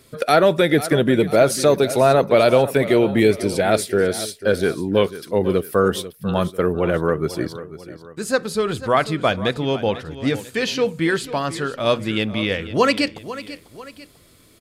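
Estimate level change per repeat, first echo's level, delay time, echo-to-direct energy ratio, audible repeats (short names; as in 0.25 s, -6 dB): -7.0 dB, -14.5 dB, 0.494 s, -13.5 dB, 2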